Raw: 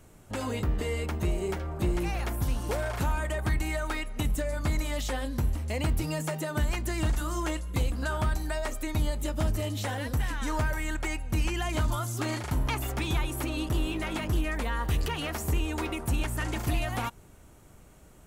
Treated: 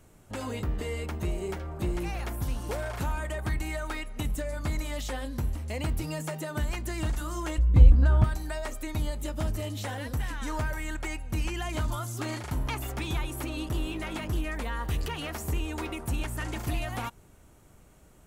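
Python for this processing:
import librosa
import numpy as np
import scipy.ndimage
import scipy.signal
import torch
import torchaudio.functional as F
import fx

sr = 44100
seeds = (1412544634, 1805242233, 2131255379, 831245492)

y = fx.riaa(x, sr, side='playback', at=(7.58, 8.24))
y = y * 10.0 ** (-2.5 / 20.0)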